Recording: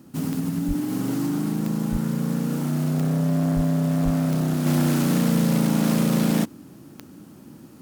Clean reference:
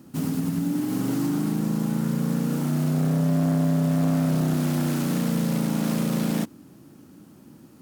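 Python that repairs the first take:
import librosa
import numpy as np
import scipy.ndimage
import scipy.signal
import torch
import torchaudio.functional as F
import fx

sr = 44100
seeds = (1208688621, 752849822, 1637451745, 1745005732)

y = fx.fix_declick_ar(x, sr, threshold=10.0)
y = fx.fix_deplosive(y, sr, at_s=(0.67, 1.91, 3.55, 4.04))
y = fx.fix_level(y, sr, at_s=4.66, step_db=-4.0)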